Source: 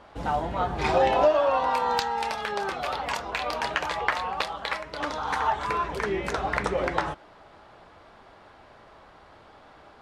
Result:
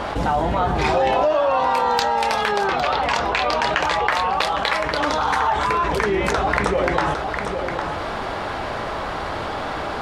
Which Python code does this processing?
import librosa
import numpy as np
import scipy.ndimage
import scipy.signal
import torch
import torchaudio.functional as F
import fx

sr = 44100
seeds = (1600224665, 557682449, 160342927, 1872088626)

y = fx.lowpass(x, sr, hz=fx.line((2.67, 4700.0), (4.05, 9900.0)), slope=12, at=(2.67, 4.05), fade=0.02)
y = y + 10.0 ** (-19.5 / 20.0) * np.pad(y, (int(806 * sr / 1000.0), 0))[:len(y)]
y = fx.env_flatten(y, sr, amount_pct=70)